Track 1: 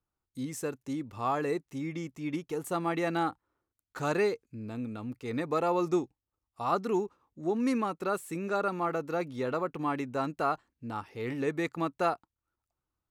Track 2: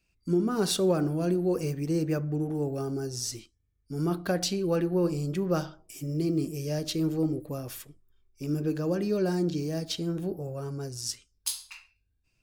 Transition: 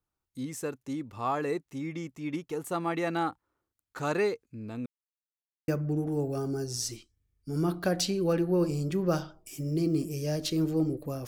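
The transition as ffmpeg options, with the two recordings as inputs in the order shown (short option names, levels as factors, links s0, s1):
-filter_complex "[0:a]apad=whole_dur=11.27,atrim=end=11.27,asplit=2[s0][s1];[s0]atrim=end=4.86,asetpts=PTS-STARTPTS,afade=t=out:st=4.856:d=0.004:c=hsin[s2];[s1]atrim=start=4.86:end=5.68,asetpts=PTS-STARTPTS,volume=0[s3];[1:a]atrim=start=2.11:end=7.7,asetpts=PTS-STARTPTS,afade=t=in:d=0.004:c=hsin[s4];[s2][s3][s4]concat=n=3:v=0:a=1"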